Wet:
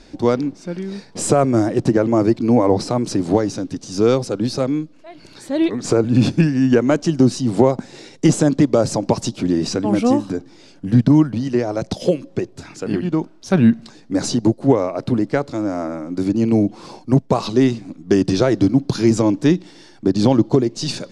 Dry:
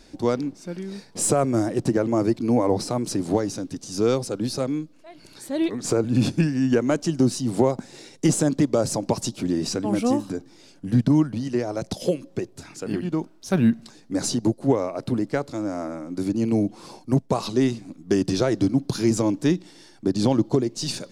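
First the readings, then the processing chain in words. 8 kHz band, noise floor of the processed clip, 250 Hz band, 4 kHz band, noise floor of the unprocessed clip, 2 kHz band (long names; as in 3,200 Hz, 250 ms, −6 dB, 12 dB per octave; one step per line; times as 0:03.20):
+0.5 dB, −46 dBFS, +6.0 dB, +3.5 dB, −52 dBFS, +5.5 dB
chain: high-frequency loss of the air 61 metres
level +6 dB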